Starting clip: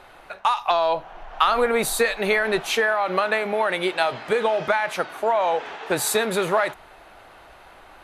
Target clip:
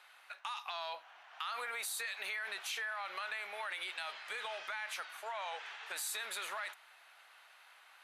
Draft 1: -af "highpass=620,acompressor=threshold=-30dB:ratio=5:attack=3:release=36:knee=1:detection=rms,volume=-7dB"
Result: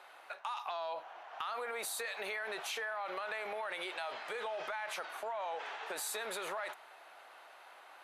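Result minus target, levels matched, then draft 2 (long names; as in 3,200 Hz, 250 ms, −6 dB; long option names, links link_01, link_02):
500 Hz band +8.0 dB
-af "highpass=1600,acompressor=threshold=-30dB:ratio=5:attack=3:release=36:knee=1:detection=rms,volume=-7dB"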